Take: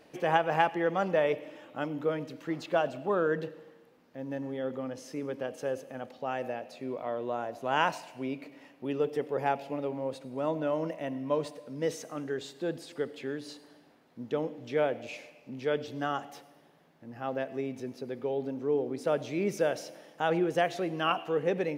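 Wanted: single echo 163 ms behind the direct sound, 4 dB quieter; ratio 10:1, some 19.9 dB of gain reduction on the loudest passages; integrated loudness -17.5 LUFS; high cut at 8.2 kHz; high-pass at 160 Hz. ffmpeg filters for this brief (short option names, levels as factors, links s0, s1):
-af "highpass=160,lowpass=8200,acompressor=threshold=0.00794:ratio=10,aecho=1:1:163:0.631,volume=25.1"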